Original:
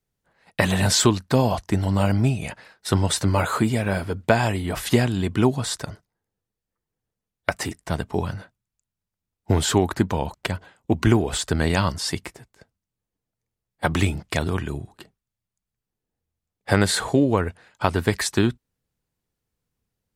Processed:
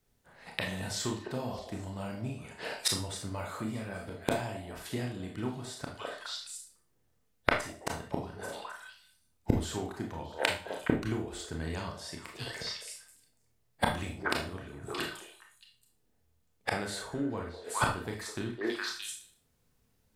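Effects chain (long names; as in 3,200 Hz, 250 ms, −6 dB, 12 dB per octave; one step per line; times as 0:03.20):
echo through a band-pass that steps 207 ms, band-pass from 540 Hz, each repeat 1.4 octaves, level −9 dB
gate with flip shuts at −20 dBFS, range −24 dB
four-comb reverb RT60 0.36 s, combs from 25 ms, DRR 1 dB
level +5.5 dB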